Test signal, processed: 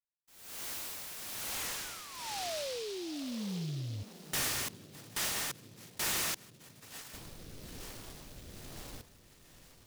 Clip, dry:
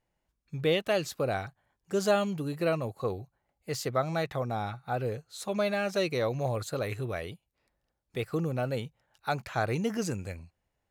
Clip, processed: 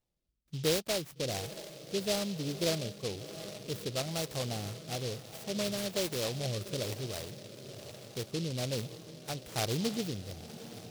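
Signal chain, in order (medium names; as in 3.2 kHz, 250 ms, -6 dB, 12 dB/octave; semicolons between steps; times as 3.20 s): peaking EQ 7.6 kHz +6 dB 1 oct; echo that smears into a reverb 692 ms, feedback 70%, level -14 dB; rotary cabinet horn 1.1 Hz; distance through air 110 m; delay time shaken by noise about 3.9 kHz, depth 0.17 ms; trim -2 dB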